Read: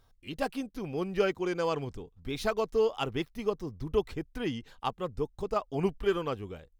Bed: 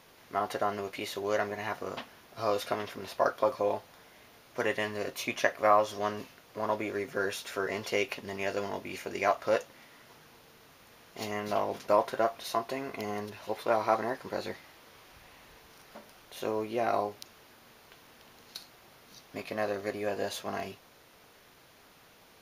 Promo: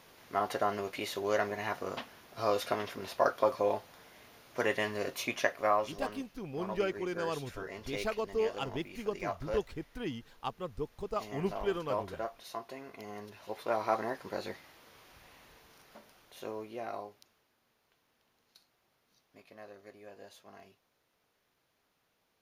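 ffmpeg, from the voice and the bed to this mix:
ffmpeg -i stem1.wav -i stem2.wav -filter_complex "[0:a]adelay=5600,volume=-5dB[link_01];[1:a]volume=6.5dB,afade=type=out:start_time=5.15:duration=0.93:silence=0.334965,afade=type=in:start_time=13.04:duration=0.98:silence=0.446684,afade=type=out:start_time=15.33:duration=2.15:silence=0.16788[link_02];[link_01][link_02]amix=inputs=2:normalize=0" out.wav

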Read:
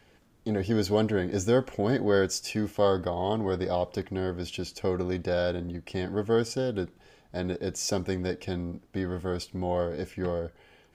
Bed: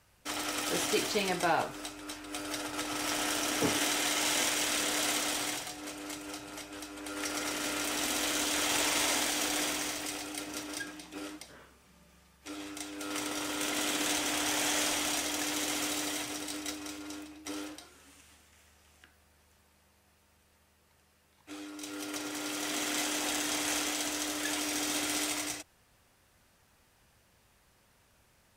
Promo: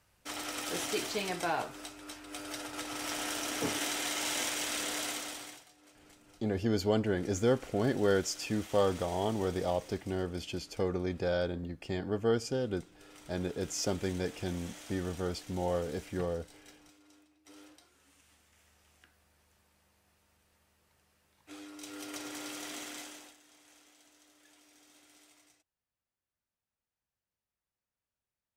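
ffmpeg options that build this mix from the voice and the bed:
ffmpeg -i stem1.wav -i stem2.wav -filter_complex "[0:a]adelay=5950,volume=-4dB[link_01];[1:a]volume=11.5dB,afade=type=out:start_time=4.92:duration=0.74:silence=0.16788,afade=type=in:start_time=17.4:duration=1.32:silence=0.16788,afade=type=out:start_time=22.34:duration=1.02:silence=0.0530884[link_02];[link_01][link_02]amix=inputs=2:normalize=0" out.wav

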